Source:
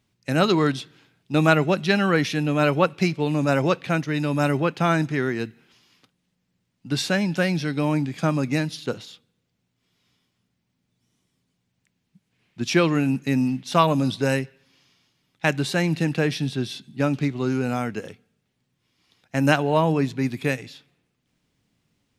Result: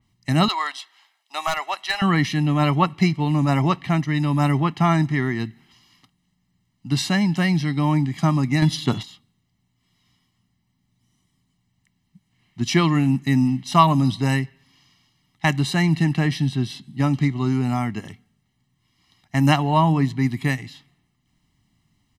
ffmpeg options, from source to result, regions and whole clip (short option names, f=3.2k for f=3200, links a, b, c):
-filter_complex "[0:a]asettb=1/sr,asplit=3[a][b][c];[a]atrim=end=0.484[d];[b]atrim=start=0.48:end=2.02,asetpts=PTS-STARTPTS,afade=t=in:d=0.004:c=qsin,afade=t=out:st=1.536:d=0.004:c=qsin,highpass=f=670:w=0.5412,highpass=f=670:w=1.3066,asoftclip=type=hard:threshold=-16.5dB[e];[c]atrim=start=2.016[f];[d][e]acrossfade=d=0.004:c1=hsin:c2=qsin[g];[g][f]acrossfade=d=0.004:c1=qsin:c2=hsin,asettb=1/sr,asplit=3[h][i][j];[h]atrim=end=8.624[k];[i]atrim=start=8.62:end=9.03,asetpts=PTS-STARTPTS,afade=t=in:d=0.004:c=qsin,afade=t=out:st=0.406:d=0.004:c=qsin,aeval=exprs='val(0)+0.00708*sin(2*PI*3400*n/s)':c=same,acontrast=82[l];[j]atrim=start=9.026[m];[k][l]acrossfade=d=0.004:c1=hsin:c2=qsin[n];[n][m]acrossfade=d=0.004:c1=qsin:c2=hsin,lowshelf=f=64:g=6.5,aecho=1:1:1:0.87,adynamicequalizer=threshold=0.01:dfrequency=3500:dqfactor=0.7:tfrequency=3500:tqfactor=0.7:attack=5:release=100:ratio=0.375:range=2:mode=cutabove:tftype=highshelf"